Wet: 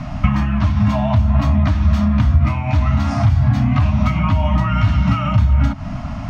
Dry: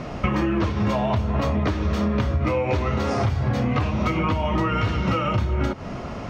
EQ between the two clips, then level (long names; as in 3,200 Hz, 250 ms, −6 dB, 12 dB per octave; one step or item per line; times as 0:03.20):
Chebyshev band-stop filter 290–610 Hz, order 4
low-shelf EQ 170 Hz +11 dB
+2.0 dB